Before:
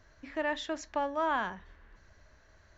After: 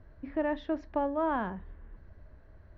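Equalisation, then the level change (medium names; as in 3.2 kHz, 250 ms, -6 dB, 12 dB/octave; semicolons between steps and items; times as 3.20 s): resonant low-pass 5.8 kHz, resonance Q 2.5; distance through air 400 m; tilt shelf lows +7.5 dB, about 810 Hz; +1.5 dB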